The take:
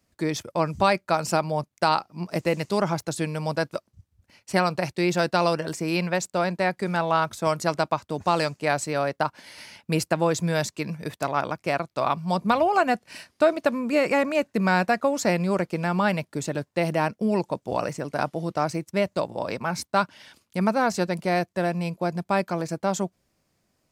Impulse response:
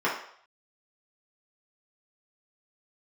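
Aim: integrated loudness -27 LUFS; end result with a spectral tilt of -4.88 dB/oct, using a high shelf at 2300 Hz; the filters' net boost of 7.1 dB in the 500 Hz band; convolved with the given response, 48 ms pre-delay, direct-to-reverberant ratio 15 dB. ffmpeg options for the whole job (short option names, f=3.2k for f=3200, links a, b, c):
-filter_complex "[0:a]equalizer=f=500:t=o:g=8.5,highshelf=f=2.3k:g=5,asplit=2[a][b];[1:a]atrim=start_sample=2205,adelay=48[c];[b][c]afir=irnorm=-1:irlink=0,volume=-28.5dB[d];[a][d]amix=inputs=2:normalize=0,volume=-6.5dB"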